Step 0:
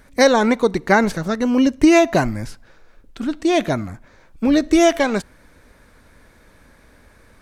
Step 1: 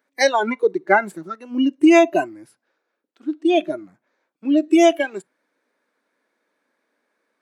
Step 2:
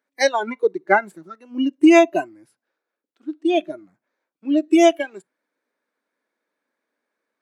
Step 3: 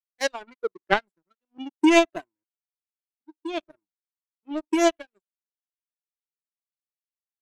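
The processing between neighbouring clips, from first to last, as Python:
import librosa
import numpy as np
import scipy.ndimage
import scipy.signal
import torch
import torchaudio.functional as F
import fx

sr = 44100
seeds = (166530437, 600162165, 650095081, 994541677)

y1 = fx.noise_reduce_blind(x, sr, reduce_db=19)
y1 = scipy.signal.sosfilt(scipy.signal.butter(4, 270.0, 'highpass', fs=sr, output='sos'), y1)
y1 = fx.high_shelf(y1, sr, hz=7600.0, db=-9.0)
y1 = F.gain(torch.from_numpy(y1), 1.0).numpy()
y2 = fx.upward_expand(y1, sr, threshold_db=-26.0, expansion=1.5)
y2 = F.gain(torch.from_numpy(y2), 1.0).numpy()
y3 = fx.power_curve(y2, sr, exponent=2.0)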